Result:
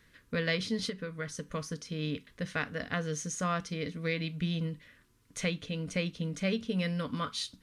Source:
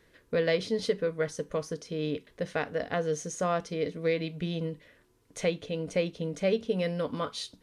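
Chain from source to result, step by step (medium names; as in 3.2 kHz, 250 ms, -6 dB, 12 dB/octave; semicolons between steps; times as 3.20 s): 0.82–1.48 s: compression 2.5:1, threshold -30 dBFS, peak gain reduction 6.5 dB; high-order bell 540 Hz -10 dB; trim +1.5 dB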